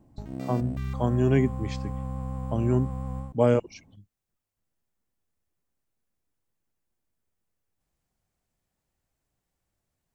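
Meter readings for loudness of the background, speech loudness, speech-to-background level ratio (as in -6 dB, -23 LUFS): -34.5 LUFS, -26.5 LUFS, 8.0 dB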